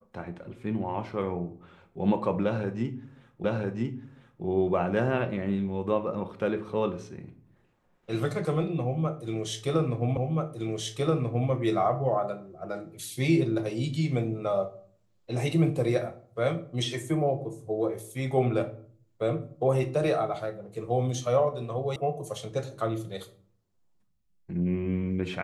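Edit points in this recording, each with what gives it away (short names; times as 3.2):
3.44 repeat of the last 1 s
10.17 repeat of the last 1.33 s
21.96 sound cut off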